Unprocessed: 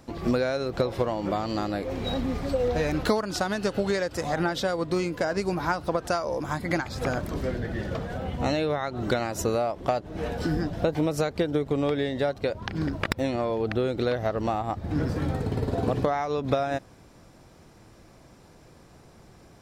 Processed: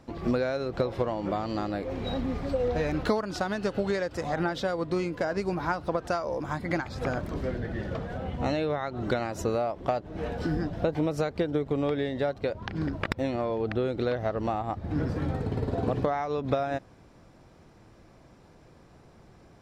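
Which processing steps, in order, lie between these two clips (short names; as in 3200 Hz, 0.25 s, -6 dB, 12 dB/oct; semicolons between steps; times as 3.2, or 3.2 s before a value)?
LPF 3500 Hz 6 dB/oct; gain -2 dB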